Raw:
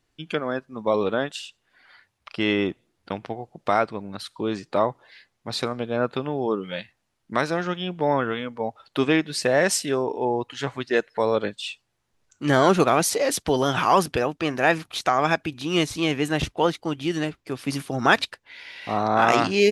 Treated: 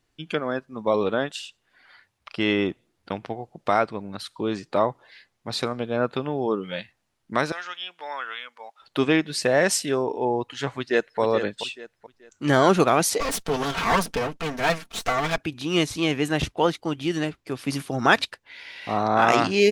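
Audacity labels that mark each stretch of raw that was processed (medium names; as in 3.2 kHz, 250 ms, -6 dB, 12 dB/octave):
7.520000	8.820000	high-pass 1.4 kHz
10.780000	11.200000	echo throw 430 ms, feedback 30%, level -9 dB
13.200000	15.380000	comb filter that takes the minimum delay 4.4 ms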